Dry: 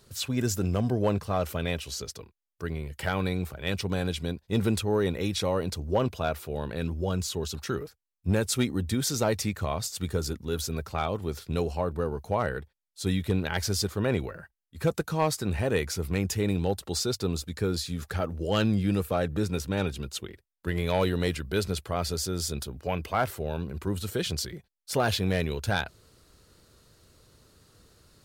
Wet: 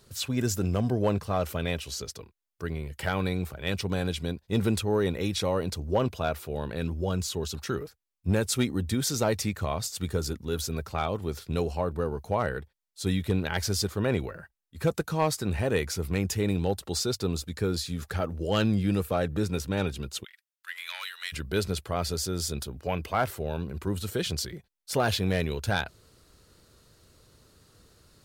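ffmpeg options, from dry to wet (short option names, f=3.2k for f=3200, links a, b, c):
-filter_complex "[0:a]asplit=3[a][b][c];[a]afade=t=out:st=20.23:d=0.02[d];[b]highpass=f=1.4k:w=0.5412,highpass=f=1.4k:w=1.3066,afade=t=in:st=20.23:d=0.02,afade=t=out:st=21.32:d=0.02[e];[c]afade=t=in:st=21.32:d=0.02[f];[d][e][f]amix=inputs=3:normalize=0"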